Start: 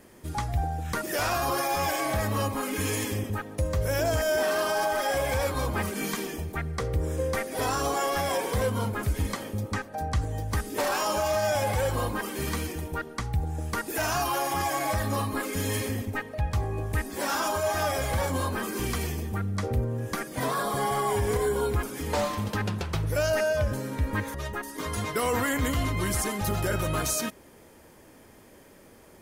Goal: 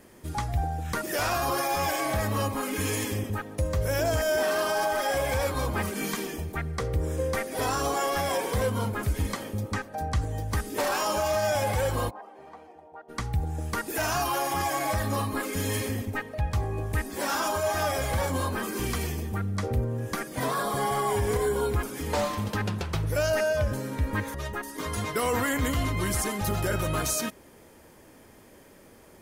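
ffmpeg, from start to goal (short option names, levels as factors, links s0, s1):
-filter_complex "[0:a]asplit=3[s0][s1][s2];[s0]afade=t=out:st=12.09:d=0.02[s3];[s1]bandpass=f=740:t=q:w=4.9:csg=0,afade=t=in:st=12.09:d=0.02,afade=t=out:st=13.08:d=0.02[s4];[s2]afade=t=in:st=13.08:d=0.02[s5];[s3][s4][s5]amix=inputs=3:normalize=0"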